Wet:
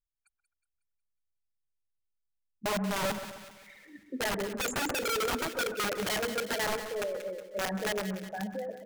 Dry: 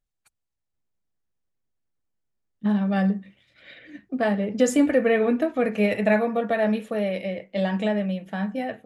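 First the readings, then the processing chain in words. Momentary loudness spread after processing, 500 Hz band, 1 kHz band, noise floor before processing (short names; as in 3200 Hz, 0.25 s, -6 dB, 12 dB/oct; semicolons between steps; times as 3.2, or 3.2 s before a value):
13 LU, -10.0 dB, -4.0 dB, -81 dBFS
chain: formant sharpening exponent 3; wrapped overs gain 18 dB; split-band echo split 1600 Hz, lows 0.13 s, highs 0.183 s, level -10 dB; gain -8.5 dB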